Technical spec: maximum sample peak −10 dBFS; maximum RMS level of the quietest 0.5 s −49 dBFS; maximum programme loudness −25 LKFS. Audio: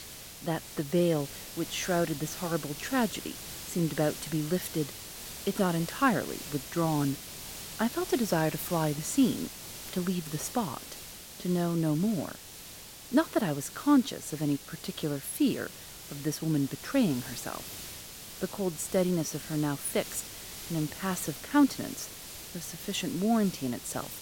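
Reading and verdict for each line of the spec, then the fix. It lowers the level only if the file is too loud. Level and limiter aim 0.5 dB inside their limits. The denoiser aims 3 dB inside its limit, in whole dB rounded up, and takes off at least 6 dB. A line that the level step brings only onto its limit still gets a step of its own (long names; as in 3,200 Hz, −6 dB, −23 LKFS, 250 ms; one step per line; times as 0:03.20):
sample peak −12.5 dBFS: in spec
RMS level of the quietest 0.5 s −47 dBFS: out of spec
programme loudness −31.0 LKFS: in spec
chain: broadband denoise 6 dB, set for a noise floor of −47 dBFS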